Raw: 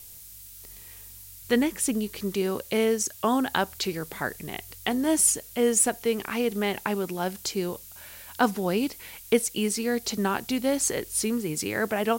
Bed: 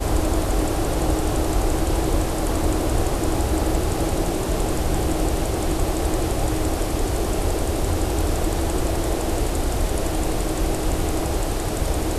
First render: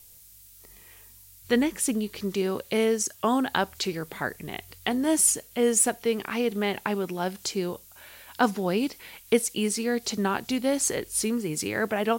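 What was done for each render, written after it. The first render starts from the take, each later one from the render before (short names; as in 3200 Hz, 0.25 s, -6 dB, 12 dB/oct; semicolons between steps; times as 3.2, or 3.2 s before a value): noise print and reduce 6 dB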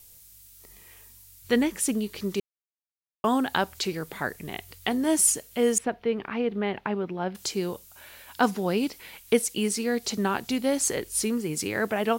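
2.4–3.24 mute; 5.78–7.35 air absorption 340 m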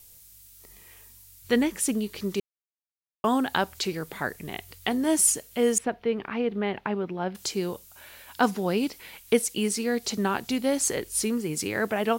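nothing audible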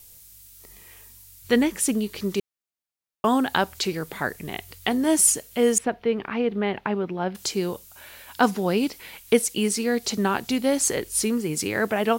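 gain +3 dB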